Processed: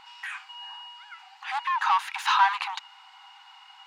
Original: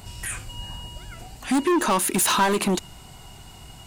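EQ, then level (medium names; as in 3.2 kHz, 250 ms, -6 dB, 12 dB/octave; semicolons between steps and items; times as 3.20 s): brick-wall FIR high-pass 760 Hz; distance through air 250 m; +2.5 dB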